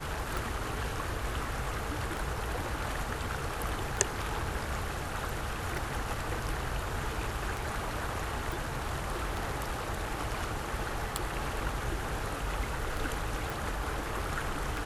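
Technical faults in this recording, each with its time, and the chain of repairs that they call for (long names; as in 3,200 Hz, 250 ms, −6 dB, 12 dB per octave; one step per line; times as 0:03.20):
scratch tick 33 1/3 rpm
0:08.52: click
0:13.50: click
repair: click removal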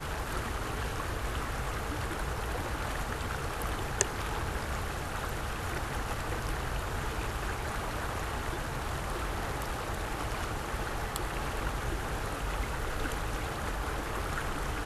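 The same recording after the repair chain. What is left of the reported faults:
none of them is left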